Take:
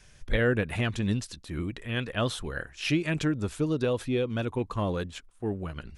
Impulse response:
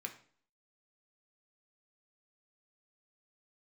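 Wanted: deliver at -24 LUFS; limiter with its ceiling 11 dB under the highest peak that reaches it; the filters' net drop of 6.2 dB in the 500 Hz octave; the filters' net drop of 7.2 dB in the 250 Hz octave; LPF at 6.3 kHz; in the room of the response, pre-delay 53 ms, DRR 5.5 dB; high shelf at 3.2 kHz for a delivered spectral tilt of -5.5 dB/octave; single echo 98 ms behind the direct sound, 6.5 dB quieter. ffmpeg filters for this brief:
-filter_complex "[0:a]lowpass=6300,equalizer=f=250:t=o:g=-8.5,equalizer=f=500:t=o:g=-4.5,highshelf=f=3200:g=-9,alimiter=level_in=1.19:limit=0.0631:level=0:latency=1,volume=0.841,aecho=1:1:98:0.473,asplit=2[s0][s1];[1:a]atrim=start_sample=2205,adelay=53[s2];[s1][s2]afir=irnorm=-1:irlink=0,volume=0.631[s3];[s0][s3]amix=inputs=2:normalize=0,volume=3.35"

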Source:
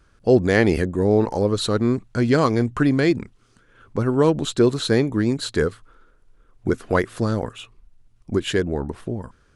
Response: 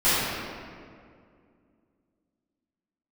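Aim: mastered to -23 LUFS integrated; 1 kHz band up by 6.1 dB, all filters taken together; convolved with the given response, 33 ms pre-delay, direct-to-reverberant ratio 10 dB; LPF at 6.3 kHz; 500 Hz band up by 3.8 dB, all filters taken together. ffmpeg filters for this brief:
-filter_complex "[0:a]lowpass=6300,equalizer=f=500:t=o:g=3.5,equalizer=f=1000:t=o:g=6.5,asplit=2[s0][s1];[1:a]atrim=start_sample=2205,adelay=33[s2];[s1][s2]afir=irnorm=-1:irlink=0,volume=0.0355[s3];[s0][s3]amix=inputs=2:normalize=0,volume=0.562"

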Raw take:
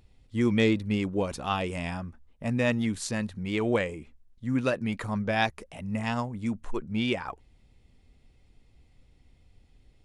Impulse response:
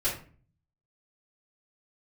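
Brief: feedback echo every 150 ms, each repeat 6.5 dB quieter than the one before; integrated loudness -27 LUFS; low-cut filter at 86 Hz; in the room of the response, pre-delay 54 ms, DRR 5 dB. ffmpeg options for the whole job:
-filter_complex "[0:a]highpass=86,aecho=1:1:150|300|450|600|750|900:0.473|0.222|0.105|0.0491|0.0231|0.0109,asplit=2[s0][s1];[1:a]atrim=start_sample=2205,adelay=54[s2];[s1][s2]afir=irnorm=-1:irlink=0,volume=0.224[s3];[s0][s3]amix=inputs=2:normalize=0,volume=1.06"

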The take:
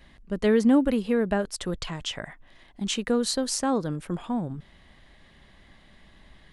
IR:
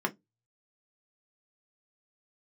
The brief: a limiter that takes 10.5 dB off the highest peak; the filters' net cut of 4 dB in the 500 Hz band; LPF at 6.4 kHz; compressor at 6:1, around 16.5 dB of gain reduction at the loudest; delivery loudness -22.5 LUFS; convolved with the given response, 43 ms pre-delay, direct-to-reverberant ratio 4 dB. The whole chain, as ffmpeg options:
-filter_complex "[0:a]lowpass=6400,equalizer=f=500:t=o:g=-4.5,acompressor=threshold=0.0178:ratio=6,alimiter=level_in=2.99:limit=0.0631:level=0:latency=1,volume=0.335,asplit=2[s0][s1];[1:a]atrim=start_sample=2205,adelay=43[s2];[s1][s2]afir=irnorm=-1:irlink=0,volume=0.266[s3];[s0][s3]amix=inputs=2:normalize=0,volume=8.41"

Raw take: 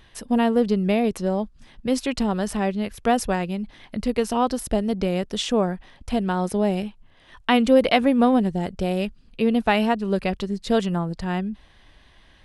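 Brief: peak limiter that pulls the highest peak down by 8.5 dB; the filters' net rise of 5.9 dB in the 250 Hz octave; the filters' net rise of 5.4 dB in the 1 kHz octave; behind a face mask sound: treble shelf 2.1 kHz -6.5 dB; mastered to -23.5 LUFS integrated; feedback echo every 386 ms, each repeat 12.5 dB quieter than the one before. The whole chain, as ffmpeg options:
-af "equalizer=f=250:t=o:g=6.5,equalizer=f=1000:t=o:g=8.5,alimiter=limit=0.376:level=0:latency=1,highshelf=f=2100:g=-6.5,aecho=1:1:386|772|1158:0.237|0.0569|0.0137,volume=0.708"

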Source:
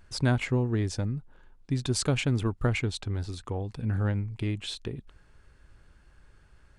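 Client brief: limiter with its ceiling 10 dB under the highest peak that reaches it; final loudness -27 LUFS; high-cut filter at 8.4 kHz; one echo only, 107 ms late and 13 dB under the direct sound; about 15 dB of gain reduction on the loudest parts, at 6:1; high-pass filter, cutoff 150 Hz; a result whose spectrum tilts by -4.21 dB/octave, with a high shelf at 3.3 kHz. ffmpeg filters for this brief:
-af "highpass=150,lowpass=8400,highshelf=f=3300:g=6.5,acompressor=threshold=0.0112:ratio=6,alimiter=level_in=3.16:limit=0.0631:level=0:latency=1,volume=0.316,aecho=1:1:107:0.224,volume=7.94"

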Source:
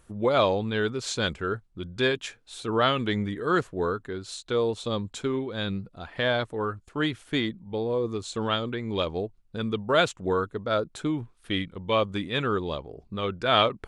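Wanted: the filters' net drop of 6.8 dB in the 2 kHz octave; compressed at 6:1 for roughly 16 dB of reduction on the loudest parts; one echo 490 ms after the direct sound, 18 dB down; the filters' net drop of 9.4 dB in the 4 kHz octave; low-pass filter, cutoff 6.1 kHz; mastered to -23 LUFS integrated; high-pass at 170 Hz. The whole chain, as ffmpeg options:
-af "highpass=170,lowpass=6100,equalizer=f=2000:t=o:g=-8,equalizer=f=4000:t=o:g=-8.5,acompressor=threshold=0.0141:ratio=6,aecho=1:1:490:0.126,volume=8.41"

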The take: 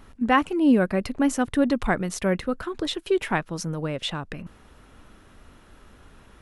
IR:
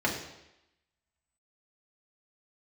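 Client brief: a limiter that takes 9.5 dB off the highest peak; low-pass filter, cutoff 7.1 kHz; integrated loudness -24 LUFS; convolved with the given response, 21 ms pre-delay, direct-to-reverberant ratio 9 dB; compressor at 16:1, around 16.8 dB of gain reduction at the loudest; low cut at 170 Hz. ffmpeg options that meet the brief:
-filter_complex "[0:a]highpass=170,lowpass=7100,acompressor=threshold=0.0282:ratio=16,alimiter=level_in=1.68:limit=0.0631:level=0:latency=1,volume=0.596,asplit=2[s0][s1];[1:a]atrim=start_sample=2205,adelay=21[s2];[s1][s2]afir=irnorm=-1:irlink=0,volume=0.1[s3];[s0][s3]amix=inputs=2:normalize=0,volume=5.01"

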